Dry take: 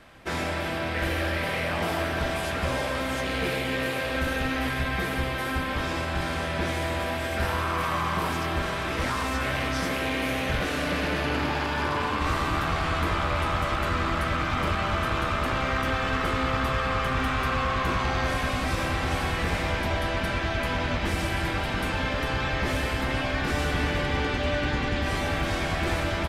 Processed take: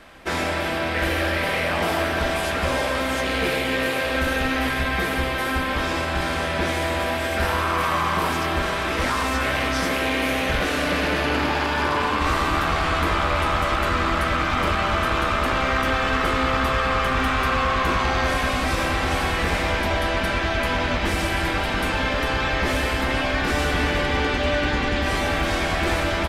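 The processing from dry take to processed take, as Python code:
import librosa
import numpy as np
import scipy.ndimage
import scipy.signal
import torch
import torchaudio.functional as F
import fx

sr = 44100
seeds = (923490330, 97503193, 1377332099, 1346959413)

y = fx.peak_eq(x, sr, hz=120.0, db=-7.0, octaves=1.1)
y = y * librosa.db_to_amplitude(5.5)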